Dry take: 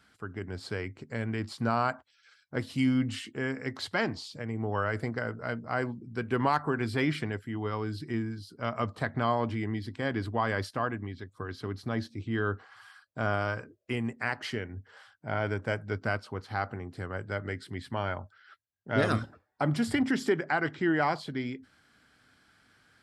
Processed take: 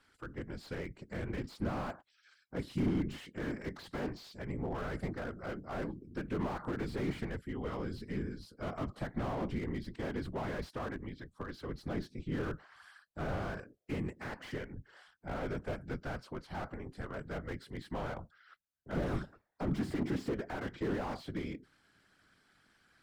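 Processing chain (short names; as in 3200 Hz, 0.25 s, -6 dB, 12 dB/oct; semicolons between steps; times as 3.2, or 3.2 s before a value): whisperiser; slew limiter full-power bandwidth 20 Hz; gain -5 dB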